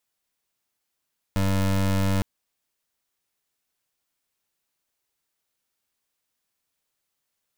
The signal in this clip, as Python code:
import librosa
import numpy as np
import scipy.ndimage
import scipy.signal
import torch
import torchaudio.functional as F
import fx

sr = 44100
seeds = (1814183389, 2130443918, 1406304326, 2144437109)

y = fx.pulse(sr, length_s=0.86, hz=96.7, level_db=-22.0, duty_pct=25)